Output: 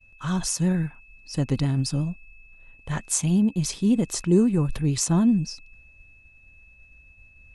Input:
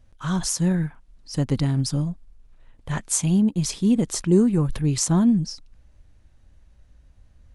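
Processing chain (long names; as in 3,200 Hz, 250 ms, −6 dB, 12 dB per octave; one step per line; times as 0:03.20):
pitch vibrato 11 Hz 44 cents
steady tone 2,600 Hz −49 dBFS
downward expander −46 dBFS
level −1.5 dB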